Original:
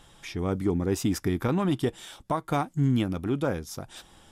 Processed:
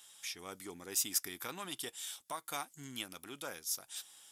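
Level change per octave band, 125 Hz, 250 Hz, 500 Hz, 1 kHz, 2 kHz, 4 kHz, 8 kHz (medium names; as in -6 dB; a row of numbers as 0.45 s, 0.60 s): -29.5 dB, -24.0 dB, -19.0 dB, -12.5 dB, -7.0 dB, -0.5 dB, +4.5 dB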